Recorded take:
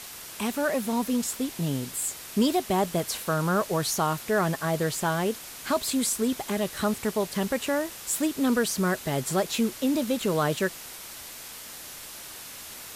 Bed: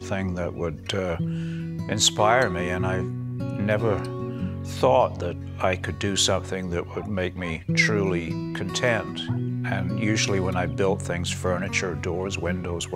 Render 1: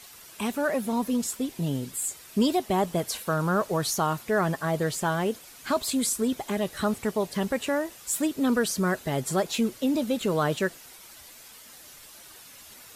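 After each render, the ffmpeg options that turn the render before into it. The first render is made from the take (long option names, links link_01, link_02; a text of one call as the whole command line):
ffmpeg -i in.wav -af "afftdn=noise_reduction=9:noise_floor=-42" out.wav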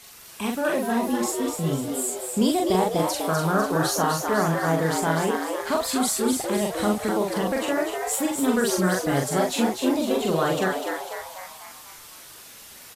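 ffmpeg -i in.wav -filter_complex "[0:a]asplit=2[link_01][link_02];[link_02]adelay=43,volume=-2.5dB[link_03];[link_01][link_03]amix=inputs=2:normalize=0,asplit=8[link_04][link_05][link_06][link_07][link_08][link_09][link_10][link_11];[link_05]adelay=249,afreqshift=120,volume=-5.5dB[link_12];[link_06]adelay=498,afreqshift=240,volume=-10.9dB[link_13];[link_07]adelay=747,afreqshift=360,volume=-16.2dB[link_14];[link_08]adelay=996,afreqshift=480,volume=-21.6dB[link_15];[link_09]adelay=1245,afreqshift=600,volume=-26.9dB[link_16];[link_10]adelay=1494,afreqshift=720,volume=-32.3dB[link_17];[link_11]adelay=1743,afreqshift=840,volume=-37.6dB[link_18];[link_04][link_12][link_13][link_14][link_15][link_16][link_17][link_18]amix=inputs=8:normalize=0" out.wav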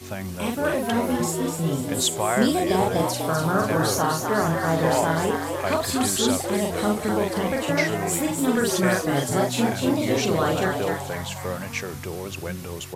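ffmpeg -i in.wav -i bed.wav -filter_complex "[1:a]volume=-5dB[link_01];[0:a][link_01]amix=inputs=2:normalize=0" out.wav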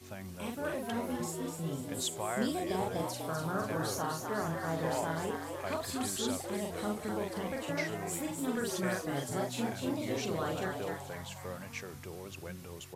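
ffmpeg -i in.wav -af "volume=-12.5dB" out.wav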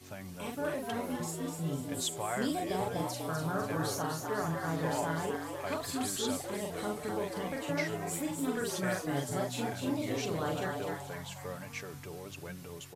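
ffmpeg -i in.wav -af "aecho=1:1:6.9:0.42" out.wav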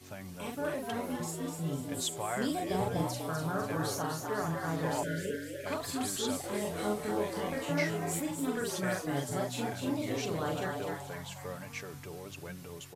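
ffmpeg -i in.wav -filter_complex "[0:a]asettb=1/sr,asplit=3[link_01][link_02][link_03];[link_01]atrim=end=2.714[link_04];[link_02]atrim=start=2.71:end=3.19,asetpts=PTS-STARTPTS,afade=type=in:duration=0.004:curve=qsin,afade=type=out:start_time=0.476:duration=0.004:curve=qsin,lowshelf=frequency=220:gain=7[link_05];[link_03]atrim=start=3.186[link_06];[link_04][link_05]acrossfade=duration=0.004:curve1=hsin:curve2=qsin[link_07];[link_07][link_06]acrossfade=duration=0.004:curve1=qsin:curve2=hsin,asettb=1/sr,asplit=3[link_08][link_09][link_10];[link_08]atrim=end=5.034[link_11];[link_09]atrim=start=5.03:end=5.66,asetpts=PTS-STARTPTS,afade=type=in:duration=0.004:curve=qsin,afade=type=out:start_time=0.626:duration=0.004:curve=qsin,asuperstop=centerf=940:order=20:qfactor=1.2[link_12];[link_10]atrim=start=5.656[link_13];[link_11][link_12]acrossfade=duration=0.004:curve1=hsin:curve2=qsin[link_14];[link_14][link_13]acrossfade=duration=0.004:curve1=qsin:curve2=hsin,asettb=1/sr,asplit=3[link_15][link_16][link_17];[link_15]atrim=end=6.414[link_18];[link_16]atrim=start=6.41:end=8.2,asetpts=PTS-STARTPTS,afade=type=in:duration=0.004:curve=qsin,afade=type=out:start_time=1.786:duration=0.004:curve=qsin,asplit=2[link_19][link_20];[link_20]adelay=24,volume=-3dB[link_21];[link_19][link_21]amix=inputs=2:normalize=0,atrim=end_sample=78939[link_22];[link_17]atrim=start=8.196[link_23];[link_18][link_22]acrossfade=duration=0.004:curve1=hsin:curve2=qsin[link_24];[link_24][link_23]acrossfade=duration=0.004:curve1=qsin:curve2=hsin" out.wav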